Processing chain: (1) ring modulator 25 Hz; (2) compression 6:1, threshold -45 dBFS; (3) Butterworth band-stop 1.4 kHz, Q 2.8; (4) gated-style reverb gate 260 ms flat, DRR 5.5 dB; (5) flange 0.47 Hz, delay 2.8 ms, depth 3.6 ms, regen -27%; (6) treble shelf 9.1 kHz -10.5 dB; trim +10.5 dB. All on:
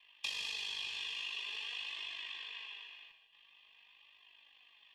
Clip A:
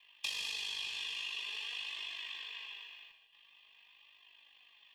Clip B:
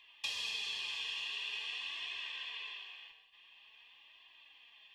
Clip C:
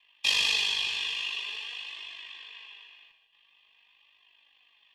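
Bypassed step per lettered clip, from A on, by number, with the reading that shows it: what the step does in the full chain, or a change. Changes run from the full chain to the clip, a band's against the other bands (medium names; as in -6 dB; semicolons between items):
6, 8 kHz band +3.0 dB; 1, momentary loudness spread change +11 LU; 2, momentary loudness spread change +9 LU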